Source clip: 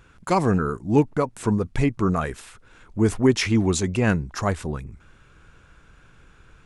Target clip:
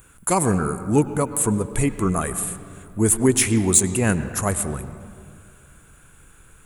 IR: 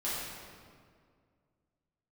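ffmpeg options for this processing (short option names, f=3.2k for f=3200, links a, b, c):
-filter_complex "[0:a]aexciter=amount=7.4:drive=9.8:freq=7.8k,asplit=2[a][b];[1:a]atrim=start_sample=2205,lowpass=4.8k,adelay=100[c];[b][c]afir=irnorm=-1:irlink=0,volume=-17dB[d];[a][d]amix=inputs=2:normalize=0"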